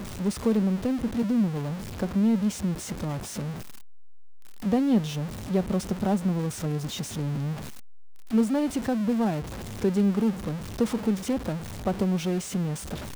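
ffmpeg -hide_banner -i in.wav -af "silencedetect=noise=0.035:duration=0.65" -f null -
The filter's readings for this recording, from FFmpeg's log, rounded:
silence_start: 3.51
silence_end: 4.65 | silence_duration: 1.14
silence_start: 7.54
silence_end: 8.33 | silence_duration: 0.79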